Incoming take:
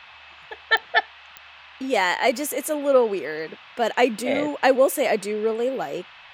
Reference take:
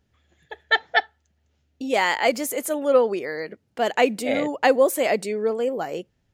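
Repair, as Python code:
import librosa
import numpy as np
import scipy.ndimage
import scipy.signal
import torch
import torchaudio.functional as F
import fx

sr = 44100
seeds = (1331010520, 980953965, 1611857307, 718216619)

y = fx.fix_declick_ar(x, sr, threshold=10.0)
y = fx.notch(y, sr, hz=2600.0, q=30.0)
y = fx.noise_reduce(y, sr, print_start_s=1.14, print_end_s=1.64, reduce_db=22.0)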